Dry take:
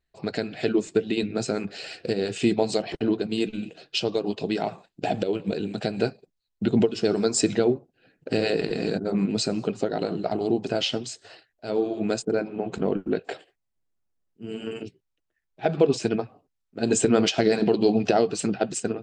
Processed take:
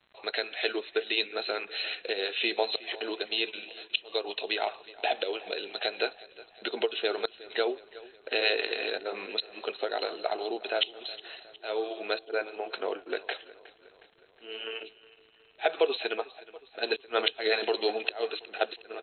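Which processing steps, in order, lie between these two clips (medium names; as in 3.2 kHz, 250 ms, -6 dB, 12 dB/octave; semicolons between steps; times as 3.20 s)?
high-pass 400 Hz 24 dB/octave; tilt EQ +4 dB/octave; inverted gate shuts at -9 dBFS, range -25 dB; crackle 150 per s -44 dBFS; brick-wall FIR low-pass 4.2 kHz; feedback delay 364 ms, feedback 56%, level -19.5 dB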